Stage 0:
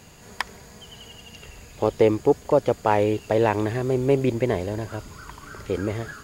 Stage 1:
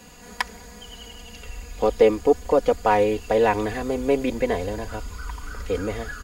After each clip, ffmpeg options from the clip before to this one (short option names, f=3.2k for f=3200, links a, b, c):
-filter_complex "[0:a]aecho=1:1:4.1:0.84,asubboost=boost=6.5:cutoff=74,acrossover=split=240[a][b];[a]alimiter=level_in=3.5dB:limit=-24dB:level=0:latency=1,volume=-3.5dB[c];[c][b]amix=inputs=2:normalize=0"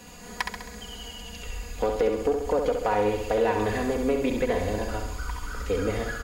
-af "acompressor=threshold=-20dB:ratio=6,asoftclip=type=tanh:threshold=-14.5dB,aecho=1:1:67|134|201|268|335|402|469|536:0.531|0.303|0.172|0.0983|0.056|0.0319|0.0182|0.0104"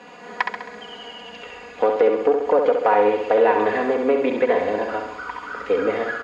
-af "highpass=350,lowpass=2.3k,volume=8.5dB"